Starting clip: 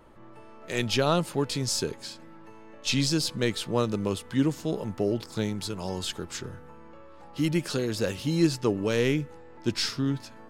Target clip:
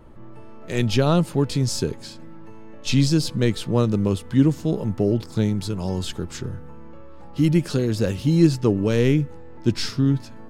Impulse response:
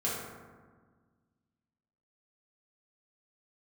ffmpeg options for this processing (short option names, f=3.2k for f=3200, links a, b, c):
-af "lowshelf=f=330:g=12"